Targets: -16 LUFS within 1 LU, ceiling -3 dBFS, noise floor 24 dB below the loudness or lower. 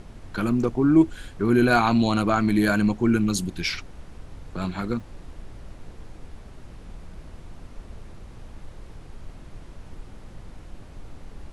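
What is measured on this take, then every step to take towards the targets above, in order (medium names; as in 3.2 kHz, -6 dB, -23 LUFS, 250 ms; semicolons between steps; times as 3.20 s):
dropouts 1; longest dropout 3.4 ms; noise floor -45 dBFS; noise floor target -47 dBFS; loudness -22.5 LUFS; peak level -5.5 dBFS; loudness target -16.0 LUFS
-> interpolate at 5.00 s, 3.4 ms; noise print and reduce 6 dB; trim +6.5 dB; peak limiter -3 dBFS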